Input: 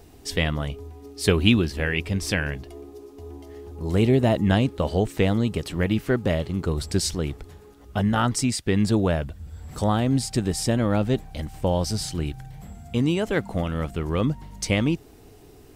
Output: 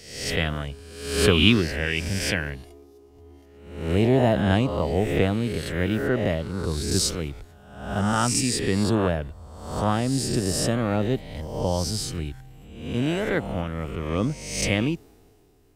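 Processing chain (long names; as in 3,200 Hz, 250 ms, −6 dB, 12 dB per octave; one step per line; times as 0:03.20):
peak hold with a rise ahead of every peak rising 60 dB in 1.06 s
multiband upward and downward expander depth 40%
level −3 dB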